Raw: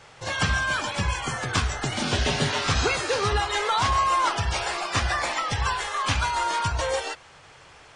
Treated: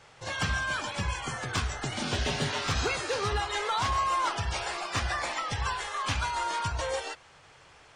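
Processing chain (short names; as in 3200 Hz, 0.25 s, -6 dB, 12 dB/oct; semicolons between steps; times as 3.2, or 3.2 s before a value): hard clip -15 dBFS, distortion -29 dB; gain -5.5 dB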